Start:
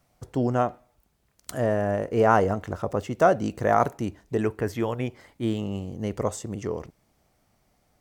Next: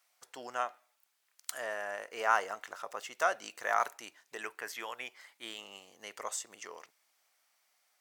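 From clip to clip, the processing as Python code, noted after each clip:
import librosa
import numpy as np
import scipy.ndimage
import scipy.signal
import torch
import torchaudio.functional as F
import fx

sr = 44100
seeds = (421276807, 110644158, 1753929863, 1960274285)

y = scipy.signal.sosfilt(scipy.signal.butter(2, 1400.0, 'highpass', fs=sr, output='sos'), x)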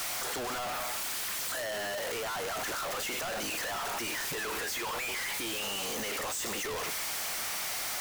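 y = np.sign(x) * np.sqrt(np.mean(np.square(x)))
y = F.gain(torch.from_numpy(y), 4.0).numpy()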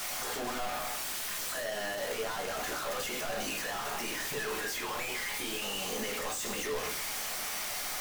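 y = fx.room_shoebox(x, sr, seeds[0], volume_m3=160.0, walls='furnished', distance_m=1.4)
y = F.gain(torch.from_numpy(y), -3.5).numpy()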